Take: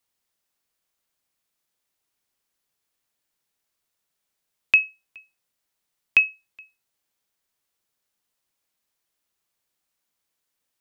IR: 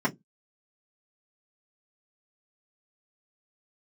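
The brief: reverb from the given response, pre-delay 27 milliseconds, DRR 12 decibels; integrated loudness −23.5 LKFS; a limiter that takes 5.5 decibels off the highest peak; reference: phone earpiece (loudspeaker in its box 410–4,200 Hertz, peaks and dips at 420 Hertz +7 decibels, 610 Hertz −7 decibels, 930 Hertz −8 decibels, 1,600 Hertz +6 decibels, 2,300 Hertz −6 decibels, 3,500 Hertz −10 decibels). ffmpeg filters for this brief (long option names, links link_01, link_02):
-filter_complex "[0:a]alimiter=limit=-11.5dB:level=0:latency=1,asplit=2[link_01][link_02];[1:a]atrim=start_sample=2205,adelay=27[link_03];[link_02][link_03]afir=irnorm=-1:irlink=0,volume=-23.5dB[link_04];[link_01][link_04]amix=inputs=2:normalize=0,highpass=410,equalizer=frequency=420:width_type=q:width=4:gain=7,equalizer=frequency=610:width_type=q:width=4:gain=-7,equalizer=frequency=930:width_type=q:width=4:gain=-8,equalizer=frequency=1600:width_type=q:width=4:gain=6,equalizer=frequency=2300:width_type=q:width=4:gain=-6,equalizer=frequency=3500:width_type=q:width=4:gain=-10,lowpass=frequency=4200:width=0.5412,lowpass=frequency=4200:width=1.3066,volume=5dB"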